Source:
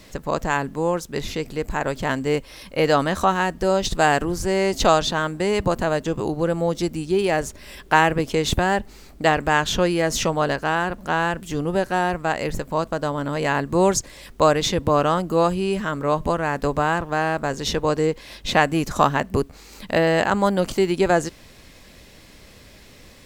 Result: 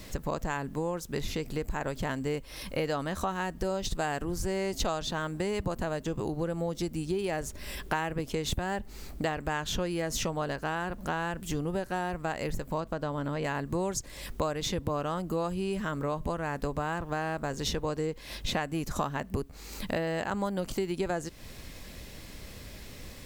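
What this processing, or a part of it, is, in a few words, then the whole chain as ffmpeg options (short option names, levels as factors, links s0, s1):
ASMR close-microphone chain: -filter_complex "[0:a]asettb=1/sr,asplit=3[s0][s1][s2];[s0]atrim=end=12.804[s3];[s1]atrim=start=12.8:end=13.44,asetpts=PTS-STARTPTS,afade=t=in:d=0.004:c=qsin,afade=t=out:st=0.636:d=0.004:c=qsin,acrossover=split=4800[s4][s5];[s5]acompressor=threshold=0.002:ratio=4:attack=1:release=60[s6];[s4][s6]amix=inputs=2:normalize=0[s7];[s2]atrim=start=13.436[s8];[s3][s7]acrossfade=d=0.004:c1=hsin:c2=qsin[s9];[s9][s8]acrossfade=d=0.004:c1=qsin:c2=hsin,lowshelf=f=160:g=6,acompressor=threshold=0.0355:ratio=4,highshelf=f=11000:g=7.5,volume=0.891"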